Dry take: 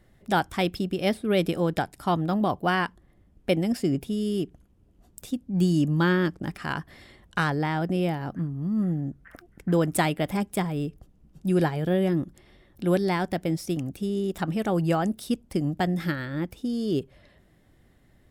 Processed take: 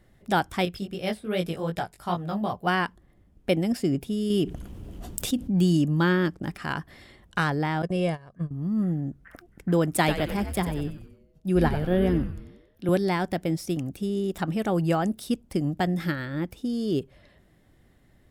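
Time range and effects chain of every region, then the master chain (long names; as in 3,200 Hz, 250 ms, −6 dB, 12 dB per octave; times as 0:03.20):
0:00.65–0:02.67: parametric band 290 Hz −8.5 dB 0.53 octaves + chorus effect 2.6 Hz, delay 16.5 ms, depth 3.4 ms
0:04.30–0:05.77: parametric band 3,100 Hz +4 dB 0.38 octaves + envelope flattener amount 50%
0:07.82–0:08.51: noise gate −29 dBFS, range −17 dB + comb filter 1.8 ms, depth 61% + bad sample-rate conversion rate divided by 2×, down none, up filtered
0:09.97–0:12.89: parametric band 8,000 Hz −6.5 dB 0.28 octaves + echo with shifted repeats 93 ms, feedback 52%, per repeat −130 Hz, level −8 dB + multiband upward and downward expander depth 40%
whole clip: no processing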